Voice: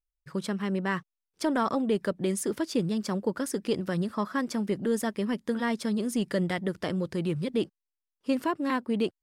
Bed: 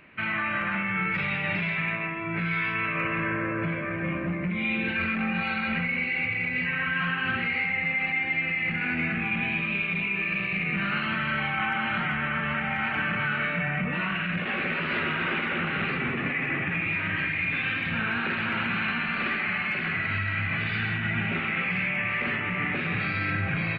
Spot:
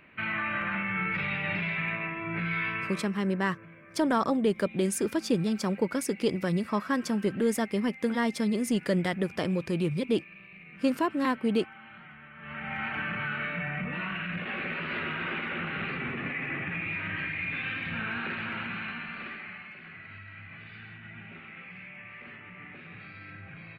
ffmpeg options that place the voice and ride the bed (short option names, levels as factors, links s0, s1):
-filter_complex "[0:a]adelay=2550,volume=1.12[s0];[1:a]volume=4.47,afade=t=out:st=2.68:d=0.43:silence=0.11885,afade=t=in:st=12.37:d=0.41:silence=0.158489,afade=t=out:st=18.24:d=1.5:silence=0.237137[s1];[s0][s1]amix=inputs=2:normalize=0"